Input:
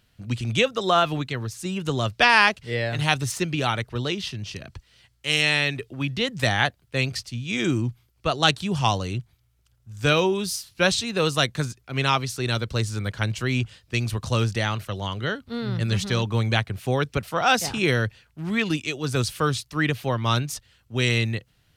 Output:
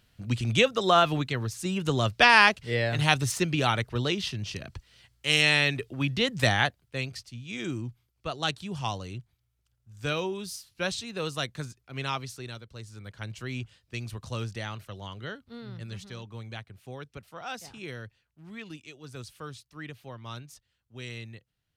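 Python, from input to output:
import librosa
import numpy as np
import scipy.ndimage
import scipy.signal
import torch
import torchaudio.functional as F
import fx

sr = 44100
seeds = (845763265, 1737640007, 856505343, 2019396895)

y = fx.gain(x, sr, db=fx.line((6.48, -1.0), (7.12, -10.0), (12.32, -10.0), (12.66, -20.0), (13.41, -11.0), (15.35, -11.0), (16.17, -18.0)))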